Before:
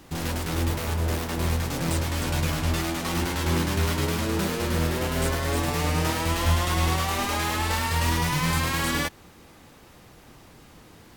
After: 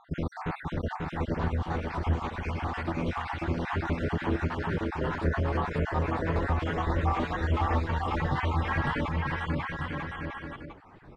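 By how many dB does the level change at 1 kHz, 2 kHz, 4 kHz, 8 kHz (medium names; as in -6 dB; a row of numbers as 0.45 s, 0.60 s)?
-2.5 dB, -4.5 dB, -14.0 dB, under -25 dB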